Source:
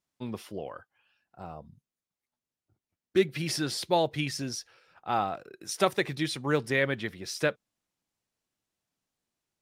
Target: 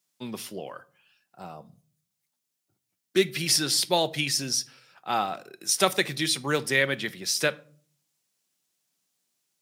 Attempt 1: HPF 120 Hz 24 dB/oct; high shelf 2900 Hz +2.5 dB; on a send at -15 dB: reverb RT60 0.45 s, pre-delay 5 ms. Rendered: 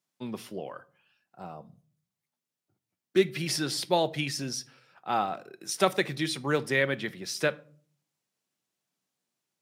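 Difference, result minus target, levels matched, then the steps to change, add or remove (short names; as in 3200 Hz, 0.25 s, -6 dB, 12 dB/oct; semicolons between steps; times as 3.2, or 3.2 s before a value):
8000 Hz band -5.5 dB
change: high shelf 2900 Hz +13.5 dB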